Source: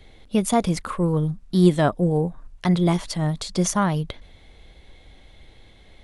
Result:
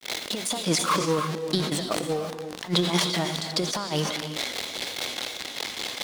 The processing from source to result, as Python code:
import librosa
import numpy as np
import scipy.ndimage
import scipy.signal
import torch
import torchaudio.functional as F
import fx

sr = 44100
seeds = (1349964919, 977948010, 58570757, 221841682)

y = x + 0.5 * 10.0 ** (-30.0 / 20.0) * np.sign(x)
y = scipy.signal.sosfilt(scipy.signal.butter(2, 310.0, 'highpass', fs=sr, output='sos'), y)
y = fx.peak_eq(y, sr, hz=4400.0, db=7.5, octaves=1.2)
y = fx.over_compress(y, sr, threshold_db=-26.0, ratio=-0.5)
y = fx.granulator(y, sr, seeds[0], grain_ms=223.0, per_s=4.9, spray_ms=12.0, spread_st=0)
y = fx.rev_gated(y, sr, seeds[1], gate_ms=370, shape='rising', drr_db=8.0)
y = fx.sustainer(y, sr, db_per_s=53.0)
y = y * librosa.db_to_amplitude(3.0)